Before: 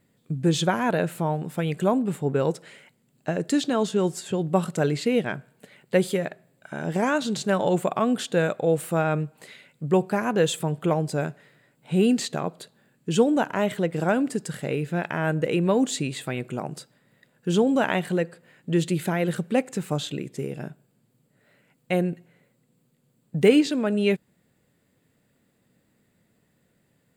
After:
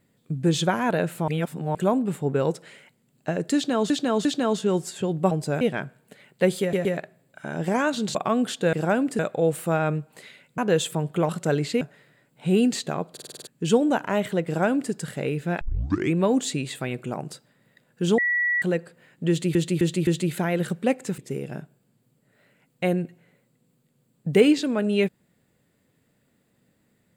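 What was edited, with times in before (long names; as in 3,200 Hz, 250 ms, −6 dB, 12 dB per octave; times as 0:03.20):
0:01.28–0:01.75: reverse
0:03.55–0:03.90: repeat, 3 plays
0:04.61–0:05.13: swap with 0:10.97–0:11.27
0:06.13: stutter 0.12 s, 3 plays
0:07.43–0:07.86: remove
0:09.83–0:10.26: remove
0:12.58: stutter in place 0.05 s, 7 plays
0:13.92–0:14.38: duplicate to 0:08.44
0:15.07: tape start 0.54 s
0:17.64–0:18.08: beep over 1,940 Hz −20 dBFS
0:18.75–0:19.01: repeat, 4 plays
0:19.86–0:20.26: remove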